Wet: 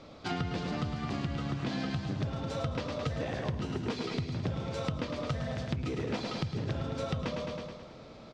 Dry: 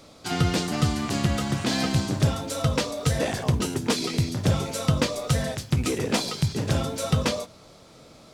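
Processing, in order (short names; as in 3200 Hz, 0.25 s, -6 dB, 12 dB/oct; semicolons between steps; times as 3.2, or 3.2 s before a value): air absorption 180 m; feedback echo 0.107 s, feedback 54%, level -7 dB; compressor 6:1, threshold -31 dBFS, peak gain reduction 14.5 dB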